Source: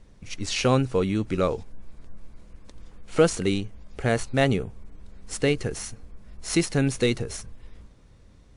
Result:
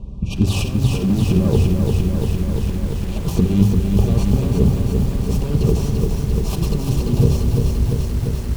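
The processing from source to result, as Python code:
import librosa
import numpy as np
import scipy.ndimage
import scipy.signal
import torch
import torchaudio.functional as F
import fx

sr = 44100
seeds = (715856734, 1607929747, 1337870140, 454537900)

p1 = fx.self_delay(x, sr, depth_ms=0.32)
p2 = scipy.signal.sosfilt(scipy.signal.cheby1(5, 1.0, [1200.0, 2400.0], 'bandstop', fs=sr, output='sos'), p1)
p3 = (np.mod(10.0 ** (21.0 / 20.0) * p2 + 1.0, 2.0) - 1.0) / 10.0 ** (21.0 / 20.0)
p4 = p2 + (p3 * librosa.db_to_amplitude(-9.0))
p5 = scipy.signal.sosfilt(scipy.signal.butter(2, 53.0, 'highpass', fs=sr, output='sos'), p4)
p6 = fx.peak_eq(p5, sr, hz=1900.0, db=-7.5, octaves=0.37)
p7 = fx.over_compress(p6, sr, threshold_db=-28.0, ratio=-0.5)
p8 = fx.riaa(p7, sr, side='playback')
p9 = p8 + fx.echo_feedback(p8, sr, ms=88, feedback_pct=38, wet_db=-17.5, dry=0)
p10 = fx.room_shoebox(p9, sr, seeds[0], volume_m3=3500.0, walls='furnished', distance_m=1.2)
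p11 = fx.echo_crushed(p10, sr, ms=344, feedback_pct=80, bits=7, wet_db=-4.0)
y = p11 * librosa.db_to_amplitude(3.5)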